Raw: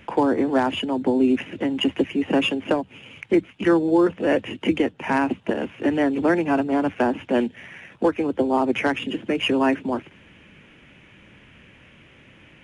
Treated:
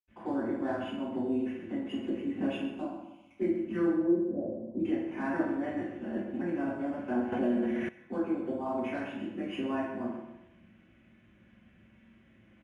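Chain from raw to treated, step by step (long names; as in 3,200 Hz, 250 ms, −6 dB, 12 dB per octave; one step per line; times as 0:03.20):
0:02.59–0:03.28: phaser with its sweep stopped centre 470 Hz, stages 6
0:03.85–0:04.72: inverse Chebyshev low-pass filter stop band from 2,100 Hz, stop band 60 dB
0:05.25–0:06.33: reverse
repeating echo 128 ms, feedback 37%, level −12 dB
convolution reverb RT60 0.75 s, pre-delay 77 ms
0:07.32–0:07.89: envelope flattener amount 70%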